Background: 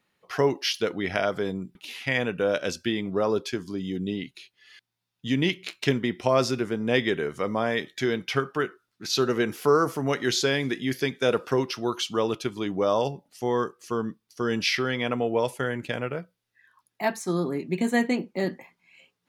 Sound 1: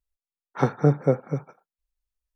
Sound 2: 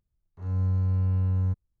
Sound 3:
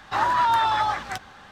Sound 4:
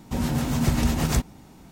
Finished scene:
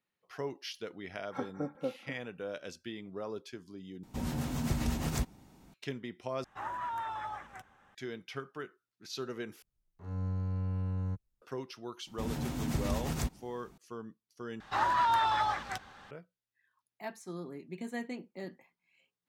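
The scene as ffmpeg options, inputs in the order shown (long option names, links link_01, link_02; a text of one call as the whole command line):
ffmpeg -i bed.wav -i cue0.wav -i cue1.wav -i cue2.wav -i cue3.wav -filter_complex "[4:a]asplit=2[link_01][link_02];[3:a]asplit=2[link_03][link_04];[0:a]volume=-15.5dB[link_05];[1:a]aecho=1:1:3.7:0.73[link_06];[link_03]equalizer=frequency=4400:width_type=o:width=0.65:gain=-15[link_07];[2:a]equalizer=frequency=77:width=2.2:gain=-13[link_08];[link_05]asplit=5[link_09][link_10][link_11][link_12][link_13];[link_09]atrim=end=4.034[link_14];[link_01]atrim=end=1.71,asetpts=PTS-STARTPTS,volume=-10dB[link_15];[link_10]atrim=start=5.736:end=6.444[link_16];[link_07]atrim=end=1.51,asetpts=PTS-STARTPTS,volume=-16.5dB[link_17];[link_11]atrim=start=7.946:end=9.624[link_18];[link_08]atrim=end=1.8,asetpts=PTS-STARTPTS,volume=-2.5dB[link_19];[link_12]atrim=start=11.416:end=14.604[link_20];[link_04]atrim=end=1.51,asetpts=PTS-STARTPTS,volume=-7dB[link_21];[link_13]atrim=start=16.106[link_22];[link_06]atrim=end=2.35,asetpts=PTS-STARTPTS,volume=-17dB,afade=type=in:duration=0.004:curve=hsin,afade=type=out:start_time=2.346:duration=0.004:curve=hsin,adelay=760[link_23];[link_02]atrim=end=1.71,asetpts=PTS-STARTPTS,volume=-11dB,afade=type=in:duration=0.004:curve=hsin,afade=type=out:start_time=1.706:duration=0.004:curve=hsin,adelay=12070[link_24];[link_14][link_15]acrossfade=duration=0.004:curve1=hsin:curve2=hsin[link_25];[link_25][link_16]acrossfade=duration=0.004:curve1=hsin:curve2=hsin[link_26];[link_26][link_17]acrossfade=duration=0.004:curve1=hsin:curve2=hsin[link_27];[link_27][link_18]acrossfade=duration=0.004:curve1=hsin:curve2=hsin[link_28];[link_28][link_19]acrossfade=duration=0.004:curve1=hsin:curve2=hsin[link_29];[link_29][link_20]acrossfade=duration=0.004:curve1=hsin:curve2=hsin[link_30];[link_30][link_21]acrossfade=duration=0.004:curve1=hsin:curve2=hsin[link_31];[link_31][link_22]acrossfade=duration=0.004:curve1=hsin:curve2=hsin[link_32];[link_32][link_23][link_24]amix=inputs=3:normalize=0" out.wav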